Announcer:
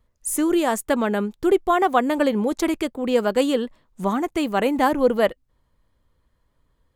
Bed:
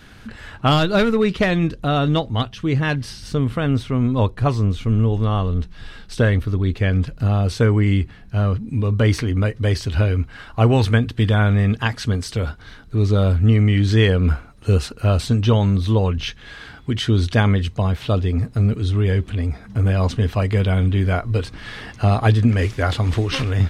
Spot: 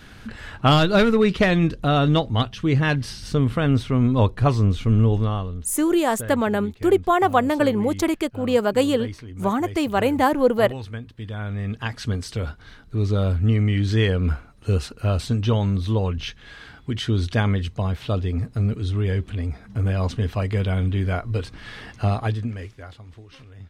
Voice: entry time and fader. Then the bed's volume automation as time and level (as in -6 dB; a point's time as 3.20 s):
5.40 s, +0.5 dB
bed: 5.15 s 0 dB
5.79 s -17 dB
11.20 s -17 dB
12.04 s -4.5 dB
22.07 s -4.5 dB
23.07 s -24.5 dB